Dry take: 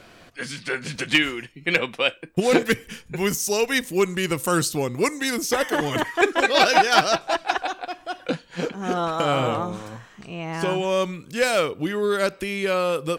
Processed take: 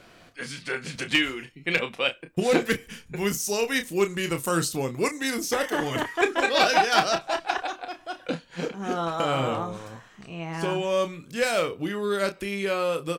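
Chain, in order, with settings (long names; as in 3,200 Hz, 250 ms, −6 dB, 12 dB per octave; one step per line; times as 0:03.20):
double-tracking delay 30 ms −8.5 dB
level −4 dB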